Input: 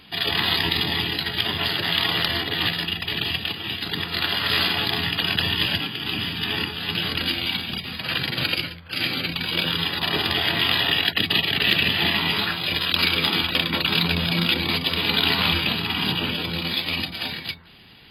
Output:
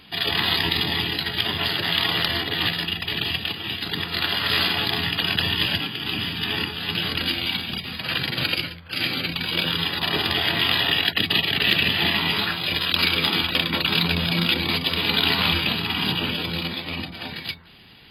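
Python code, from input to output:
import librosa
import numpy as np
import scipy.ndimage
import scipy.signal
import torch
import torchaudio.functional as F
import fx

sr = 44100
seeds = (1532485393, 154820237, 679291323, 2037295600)

y = fx.high_shelf(x, sr, hz=2400.0, db=-10.0, at=(16.67, 17.36))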